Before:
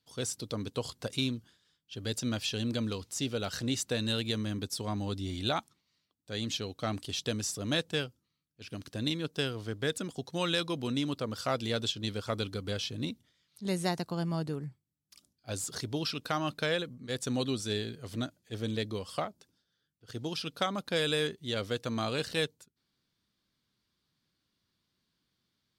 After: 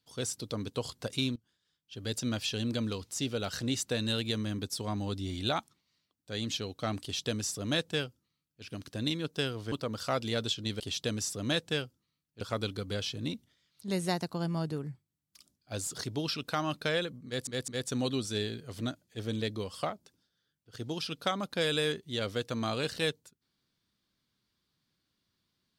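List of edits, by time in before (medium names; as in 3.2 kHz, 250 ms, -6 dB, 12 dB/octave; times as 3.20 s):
1.36–2.15 s: fade in, from -21 dB
7.02–8.63 s: copy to 12.18 s
9.72–11.10 s: delete
17.03 s: stutter 0.21 s, 3 plays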